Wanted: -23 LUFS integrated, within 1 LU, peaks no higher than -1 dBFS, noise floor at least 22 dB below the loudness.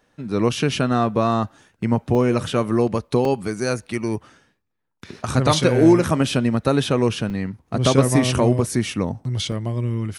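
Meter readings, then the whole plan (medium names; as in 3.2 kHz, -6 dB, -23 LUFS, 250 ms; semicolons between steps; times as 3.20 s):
dropouts 4; longest dropout 1.9 ms; loudness -20.5 LUFS; peak level -3.0 dBFS; loudness target -23.0 LUFS
-> interpolate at 2.15/3.25/7.30/9.52 s, 1.9 ms; trim -2.5 dB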